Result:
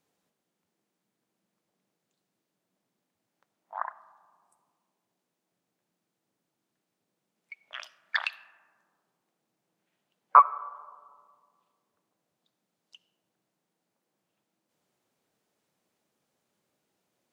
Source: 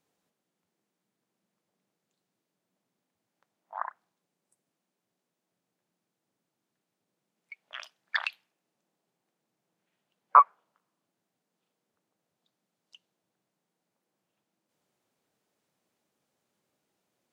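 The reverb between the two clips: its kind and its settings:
comb and all-pass reverb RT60 2.1 s, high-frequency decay 0.25×, pre-delay 30 ms, DRR 18 dB
level +1 dB

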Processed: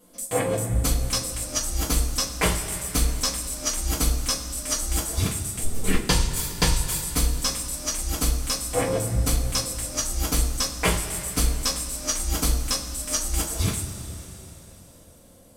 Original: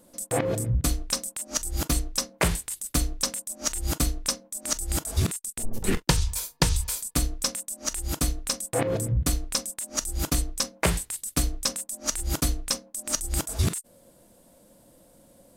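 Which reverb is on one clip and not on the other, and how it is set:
coupled-rooms reverb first 0.25 s, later 3.7 s, from −18 dB, DRR −7 dB
level −4.5 dB

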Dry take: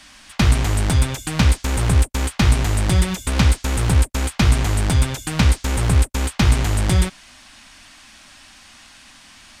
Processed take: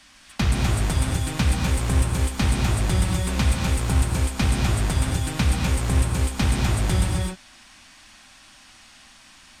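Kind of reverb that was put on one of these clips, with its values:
reverb whose tail is shaped and stops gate 280 ms rising, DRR 0.5 dB
level −6.5 dB

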